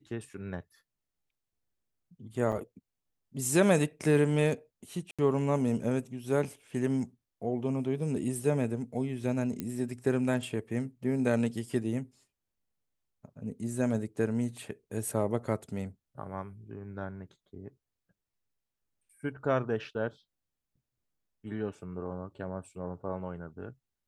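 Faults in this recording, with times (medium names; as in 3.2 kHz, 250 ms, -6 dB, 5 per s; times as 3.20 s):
2.52–2.53 s: dropout 7.7 ms
5.11–5.19 s: dropout 76 ms
9.60 s: pop -20 dBFS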